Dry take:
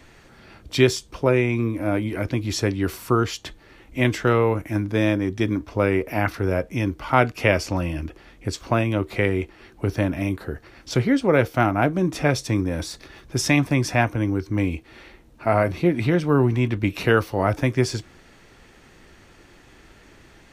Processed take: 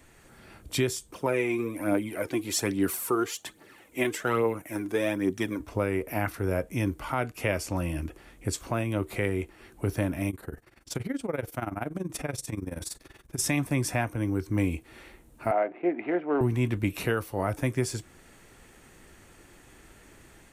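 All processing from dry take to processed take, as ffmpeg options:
ffmpeg -i in.wav -filter_complex "[0:a]asettb=1/sr,asplit=3[link_01][link_02][link_03];[link_01]atrim=end=1.124[link_04];[link_02]atrim=start=1.12:end=5.6,asetpts=PTS-STARTPTS,afade=type=in:duration=0.004:curve=qsin,afade=type=out:start_time=4.476:duration=0.004:curve=qsin,highpass=210,aphaser=in_gain=1:out_gain=1:delay=3:decay=0.51:speed=1.2:type=triangular[link_05];[link_03]atrim=start=5.596[link_06];[link_04][link_05]acrossfade=duration=0.004:curve1=hsin:curve2=qsin[link_07];[link_07][link_06]acrossfade=duration=0.004:curve1=qsin:curve2=hsin,asettb=1/sr,asplit=3[link_08][link_09][link_10];[link_08]atrim=end=10.304[link_11];[link_09]atrim=start=10.3:end=13.4,asetpts=PTS-STARTPTS,afade=type=in:duration=0.004:curve=qsin,afade=type=out:start_time=3.096:duration=0.004:curve=qsin,agate=range=-33dB:threshold=-44dB:ratio=3:release=100:detection=peak,acompressor=threshold=-26dB:ratio=2:attack=3.2:release=140:knee=1:detection=peak,tremolo=f=21:d=0.857[link_12];[link_10]atrim=start=13.396[link_13];[link_11][link_12]acrossfade=duration=0.004:curve1=hsin:curve2=qsin[link_14];[link_14][link_13]acrossfade=duration=0.004:curve1=qsin:curve2=hsin,asettb=1/sr,asplit=3[link_15][link_16][link_17];[link_15]atrim=end=15.514[link_18];[link_16]atrim=start=15.51:end=16.41,asetpts=PTS-STARTPTS,afade=type=in:duration=0.004:curve=qsin,afade=type=out:start_time=0.896:duration=0.004:curve=qsin,adynamicsmooth=sensitivity=5.5:basefreq=1200,highpass=frequency=310:width=0.5412,highpass=frequency=310:width=1.3066,equalizer=frequency=490:width_type=q:width=4:gain=-4,equalizer=frequency=710:width_type=q:width=4:gain=7,equalizer=frequency=1100:width_type=q:width=4:gain=-7,equalizer=frequency=1600:width_type=q:width=4:gain=-3,lowpass=frequency=2300:width=0.5412,lowpass=frequency=2300:width=1.3066[link_19];[link_17]atrim=start=16.406[link_20];[link_18][link_19]acrossfade=duration=0.004:curve1=hsin:curve2=qsin[link_21];[link_21][link_20]acrossfade=duration=0.004:curve1=qsin:curve2=hsin,highshelf=frequency=6700:width_type=q:width=1.5:gain=8.5,alimiter=limit=-12dB:level=0:latency=1:release=463,dynaudnorm=framelen=160:gausssize=3:maxgain=3.5dB,volume=-7dB" out.wav

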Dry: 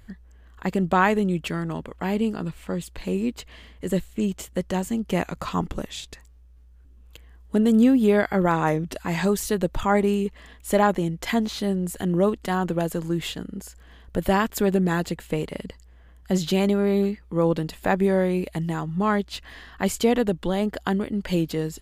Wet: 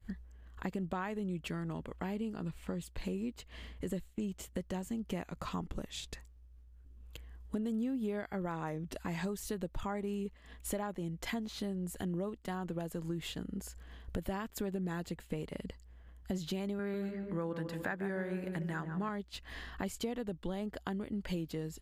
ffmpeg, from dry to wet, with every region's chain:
ffmpeg -i in.wav -filter_complex "[0:a]asettb=1/sr,asplit=3[link_01][link_02][link_03];[link_01]atrim=end=16.794[link_04];[link_02]atrim=start=16.79:end=19.09,asetpts=PTS-STARTPTS,afade=type=in:duration=0.004:curve=qsin,afade=type=out:start_time=2.296:duration=0.004:curve=qsin,highpass=82,equalizer=frequency=1600:width_type=o:width=0.65:gain=13,asplit=2[link_05][link_06];[link_06]adelay=147,lowpass=frequency=1200:poles=1,volume=-7.5dB,asplit=2[link_07][link_08];[link_08]adelay=147,lowpass=frequency=1200:poles=1,volume=0.52,asplit=2[link_09][link_10];[link_10]adelay=147,lowpass=frequency=1200:poles=1,volume=0.52,asplit=2[link_11][link_12];[link_12]adelay=147,lowpass=frequency=1200:poles=1,volume=0.52,asplit=2[link_13][link_14];[link_14]adelay=147,lowpass=frequency=1200:poles=1,volume=0.52,asplit=2[link_15][link_16];[link_16]adelay=147,lowpass=frequency=1200:poles=1,volume=0.52[link_17];[link_05][link_07][link_09][link_11][link_13][link_15][link_17]amix=inputs=7:normalize=0,atrim=end_sample=101430[link_18];[link_03]atrim=start=19.086[link_19];[link_04][link_18]acrossfade=duration=0.004:curve1=hsin:curve2=qsin[link_20];[link_20][link_19]acrossfade=duration=0.004:curve1=qsin:curve2=hsin,acompressor=threshold=-37dB:ratio=4,lowshelf=frequency=230:gain=4,agate=range=-33dB:threshold=-41dB:ratio=3:detection=peak,volume=-2dB" out.wav

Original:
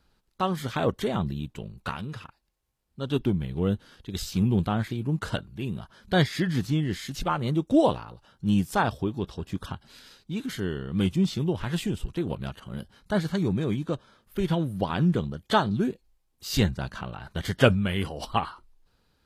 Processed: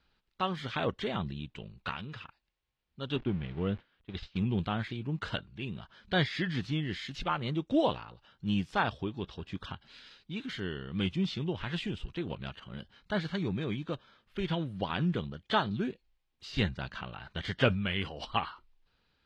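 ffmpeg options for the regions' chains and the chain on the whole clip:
ffmpeg -i in.wav -filter_complex "[0:a]asettb=1/sr,asplit=3[link_01][link_02][link_03];[link_01]atrim=end=3.164[link_04];[link_02]atrim=start=3.16:end=4.36,asetpts=PTS-STARTPTS,afade=type=in:duration=0.004:curve=qsin,afade=type=out:start_time=1.196:duration=0.004:curve=qsin,aeval=exprs='val(0)+0.5*0.01*sgn(val(0))':channel_layout=same,lowpass=2900,agate=range=-33dB:threshold=-32dB:ratio=3:release=100:detection=peak[link_05];[link_03]atrim=start=4.356[link_06];[link_04][link_05]acrossfade=duration=0.004:curve1=hsin:curve2=qsin[link_07];[link_07][link_06]acrossfade=duration=0.004:curve1=qsin:curve2=hsin,deesser=0.75,lowpass=4400,equalizer=frequency=2800:width=0.64:gain=9,volume=-7.5dB" out.wav

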